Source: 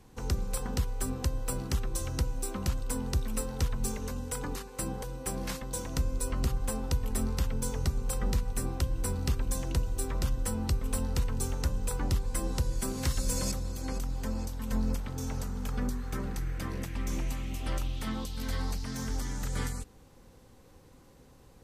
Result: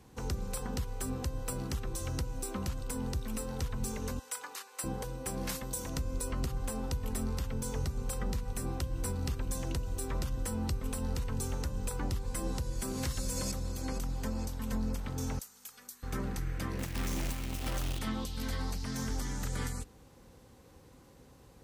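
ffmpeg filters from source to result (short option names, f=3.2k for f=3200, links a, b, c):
-filter_complex "[0:a]asettb=1/sr,asplit=3[a][b][c];[a]atrim=end=4.194[d];[b]atrim=start=4.19:end=4.84,asetpts=PTS-STARTPTS,afade=t=in:d=0.004:c=qsin,afade=t=out:st=0.646:d=0.004:c=qsin,highpass=950[e];[c]atrim=start=4.836[f];[d][e]acrossfade=d=0.004:c1=hsin:c2=qsin[g];[g][f]acrossfade=d=0.004:c1=qsin:c2=hsin,asettb=1/sr,asplit=3[h][i][j];[h]atrim=end=5.494[k];[i]atrim=start=5.49:end=5.9,asetpts=PTS-STARTPTS,afade=t=in:d=0.004:c=qsin,afade=t=out:st=0.406:d=0.004:c=qsin,highshelf=f=8.1k:g=10.5[l];[j]atrim=start=5.896[m];[k][l]acrossfade=d=0.004:c1=hsin:c2=qsin[n];[n][m]acrossfade=d=0.004:c1=qsin:c2=hsin,asettb=1/sr,asplit=3[o][p][q];[o]atrim=end=15.394[r];[p]atrim=start=15.39:end=16.03,asetpts=PTS-STARTPTS,afade=t=in:d=0.004:c=qsin,afade=t=out:st=0.636:d=0.004:c=qsin,aderivative[s];[q]atrim=start=16.026[t];[r][s]acrossfade=d=0.004:c1=hsin:c2=qsin[u];[u][t]acrossfade=d=0.004:c1=qsin:c2=hsin,asettb=1/sr,asplit=3[v][w][x];[v]atrim=end=16.794[y];[w]atrim=start=16.79:end=17.99,asetpts=PTS-STARTPTS,afade=t=in:d=0.004:c=qsin,afade=t=out:st=1.196:d=0.004:c=qsin,acrusher=bits=2:mode=log:mix=0:aa=0.000001[z];[x]atrim=start=17.986[aa];[y][z]acrossfade=d=0.004:c1=hsin:c2=qsin[ab];[ab][aa]acrossfade=d=0.004:c1=qsin:c2=hsin,highpass=40,alimiter=level_in=0.5dB:limit=-24dB:level=0:latency=1:release=137,volume=-0.5dB"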